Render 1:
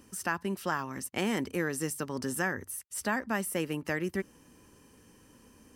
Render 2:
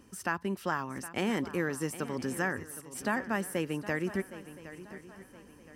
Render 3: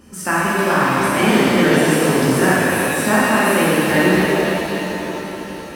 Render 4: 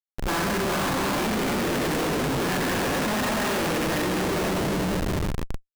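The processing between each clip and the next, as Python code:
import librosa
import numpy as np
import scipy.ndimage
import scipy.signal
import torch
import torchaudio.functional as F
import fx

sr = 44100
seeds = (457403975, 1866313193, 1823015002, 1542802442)

y1 = fx.high_shelf(x, sr, hz=4500.0, db=-6.5)
y1 = fx.echo_swing(y1, sr, ms=1020, ratio=3, feedback_pct=36, wet_db=-15)
y2 = fx.rev_shimmer(y1, sr, seeds[0], rt60_s=3.2, semitones=7, shimmer_db=-8, drr_db=-9.5)
y2 = F.gain(torch.from_numpy(y2), 8.0).numpy()
y3 = fx.schmitt(y2, sr, flips_db=-20.5)
y3 = F.gain(torch.from_numpy(y3), -8.5).numpy()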